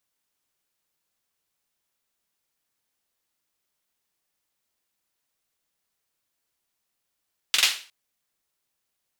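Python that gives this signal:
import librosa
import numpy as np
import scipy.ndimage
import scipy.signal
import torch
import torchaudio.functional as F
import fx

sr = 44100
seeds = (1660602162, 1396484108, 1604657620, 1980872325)

y = fx.drum_clap(sr, seeds[0], length_s=0.36, bursts=3, spacing_ms=44, hz=3100.0, decay_s=0.38)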